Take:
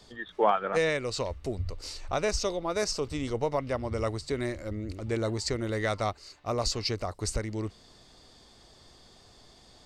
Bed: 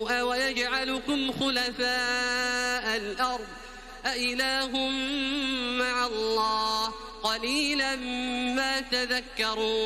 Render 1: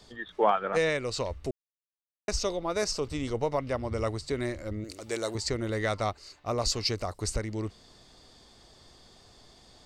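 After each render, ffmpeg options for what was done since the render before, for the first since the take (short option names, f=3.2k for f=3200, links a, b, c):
-filter_complex "[0:a]asettb=1/sr,asplit=3[a][b][c];[a]atrim=end=4.844[d];[b]atrim=start=4.84:end=5.35,asetpts=PTS-STARTPTS,afade=t=in:d=0.004:c=qsin,afade=t=out:st=0.506:d=0.004:c=qsin,bass=f=250:g=-15,treble=f=4k:g=12[e];[c]atrim=start=5.346[f];[d][e]acrossfade=d=0.004:c1=hsin:c2=qsin[g];[g][f]acrossfade=d=0.004:c1=qsin:c2=hsin,asettb=1/sr,asplit=3[h][i][j];[h]atrim=end=6.684[k];[i]atrim=start=6.68:end=7.22,asetpts=PTS-STARTPTS,afade=t=in:d=0.004:c=qsin,afade=t=out:st=0.536:d=0.004:c=qsin,highshelf=f=5.6k:g=6[l];[j]atrim=start=7.216[m];[k][l]acrossfade=d=0.004:c1=hsin:c2=qsin[n];[n][m]acrossfade=d=0.004:c1=qsin:c2=hsin,asplit=3[o][p][q];[o]atrim=end=1.51,asetpts=PTS-STARTPTS,afade=t=out:st=1.506:d=0.004:c=hsin[r];[p]atrim=start=1.51:end=2.28,asetpts=PTS-STARTPTS,volume=0[s];[q]atrim=start=2.28,asetpts=PTS-STARTPTS,afade=t=in:d=0.004:c=hsin[t];[r][s][t]concat=n=3:v=0:a=1"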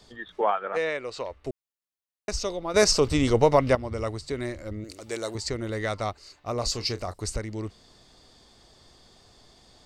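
-filter_complex "[0:a]asettb=1/sr,asplit=3[a][b][c];[a]atrim=end=0.414[d];[b]atrim=start=0.41:end=1.47,asetpts=PTS-STARTPTS,afade=t=in:d=0.004:c=qsin,afade=t=out:st=1.056:d=0.004:c=qsin,bass=f=250:g=-13,treble=f=4k:g=-10[e];[c]atrim=start=1.466[f];[d][e]acrossfade=d=0.004:c1=hsin:c2=qsin[g];[g][f]acrossfade=d=0.004:c1=qsin:c2=hsin,asettb=1/sr,asplit=3[h][i][j];[h]atrim=end=6.524[k];[i]atrim=start=6.52:end=7.14,asetpts=PTS-STARTPTS,afade=t=in:d=0.004:c=qsin,afade=t=out:st=0.616:d=0.004:c=qsin,asplit=2[l][m];[m]adelay=33,volume=-13.5dB[n];[l][n]amix=inputs=2:normalize=0,atrim=end_sample=27342[o];[j]atrim=start=7.136[p];[k][o]acrossfade=d=0.004:c1=hsin:c2=qsin[q];[q][p]acrossfade=d=0.004:c1=qsin:c2=hsin,asplit=3[r][s][t];[r]atrim=end=2.742[u];[s]atrim=start=2.738:end=3.752,asetpts=PTS-STARTPTS,volume=10dB[v];[t]atrim=start=3.748[w];[u][v]acrossfade=d=0.004:c1=hsin:c2=hsin[x];[x][w]acrossfade=d=0.004:c1=hsin:c2=hsin"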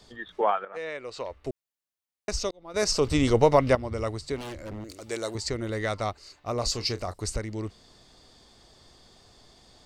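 -filter_complex "[0:a]asettb=1/sr,asplit=3[a][b][c];[a]atrim=end=4.364[d];[b]atrim=start=4.36:end=5.09,asetpts=PTS-STARTPTS,afade=t=in:d=0.004:c=qsin,afade=t=out:st=0.726:d=0.004:c=qsin,aeval=exprs='0.0251*(abs(mod(val(0)/0.0251+3,4)-2)-1)':c=same[e];[c]atrim=start=5.086[f];[d][e]acrossfade=d=0.004:c1=hsin:c2=qsin[g];[g][f]acrossfade=d=0.004:c1=qsin:c2=hsin,asplit=3[h][i][j];[h]atrim=end=0.65,asetpts=PTS-STARTPTS,afade=t=out:st=0.646:d=0.004:c=hsin:silence=0.199526[k];[i]atrim=start=0.65:end=2.51,asetpts=PTS-STARTPTS,afade=t=in:d=0.71:silence=0.199526,afade=t=out:st=1.856:d=0.004:c=hsin[l];[j]atrim=start=2.51,asetpts=PTS-STARTPTS,afade=t=in:d=0.65[m];[k][l][m]concat=n=3:v=0:a=1"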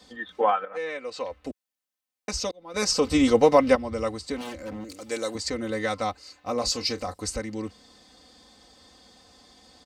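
-af "highpass=73,aecho=1:1:3.9:0.81"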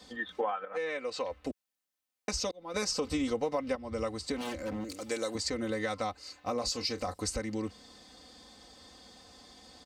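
-af "acompressor=threshold=-30dB:ratio=5"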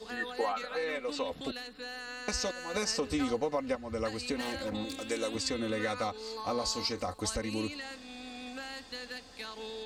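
-filter_complex "[1:a]volume=-15dB[a];[0:a][a]amix=inputs=2:normalize=0"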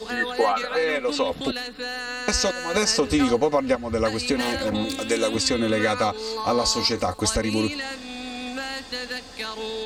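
-af "volume=11dB"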